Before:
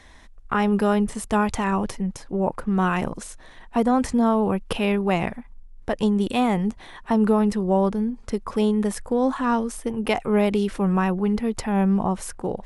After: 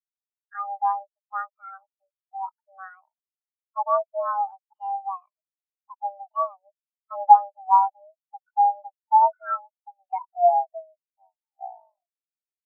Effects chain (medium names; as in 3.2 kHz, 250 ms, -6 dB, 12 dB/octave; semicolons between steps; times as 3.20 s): tape stop on the ending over 2.99 s; mistuned SSB +390 Hz 280–2700 Hz; spectral contrast expander 4:1; trim +5.5 dB